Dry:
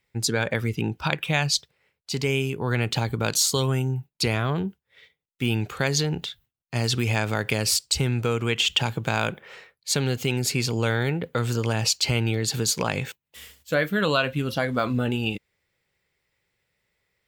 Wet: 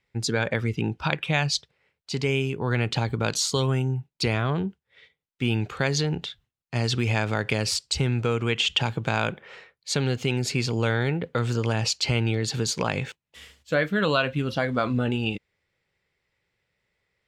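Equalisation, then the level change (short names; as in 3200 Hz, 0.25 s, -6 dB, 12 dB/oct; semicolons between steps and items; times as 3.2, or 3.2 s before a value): air absorption 64 m; 0.0 dB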